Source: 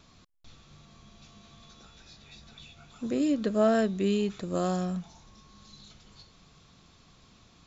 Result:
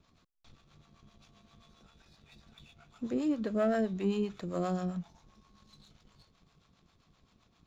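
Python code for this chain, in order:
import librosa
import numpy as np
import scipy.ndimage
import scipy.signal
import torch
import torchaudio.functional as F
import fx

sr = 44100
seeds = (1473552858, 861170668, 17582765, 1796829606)

y = fx.high_shelf(x, sr, hz=3900.0, db=-8.0)
y = fx.leveller(y, sr, passes=1)
y = fx.harmonic_tremolo(y, sr, hz=7.6, depth_pct=70, crossover_hz=520.0)
y = y * librosa.db_to_amplitude(-4.0)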